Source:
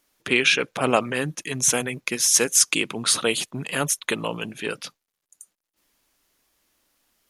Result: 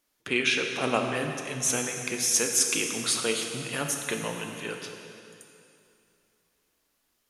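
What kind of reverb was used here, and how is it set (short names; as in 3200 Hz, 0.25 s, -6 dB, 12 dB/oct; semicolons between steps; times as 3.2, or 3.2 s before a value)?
plate-style reverb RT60 2.7 s, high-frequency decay 0.9×, DRR 2.5 dB; gain -7 dB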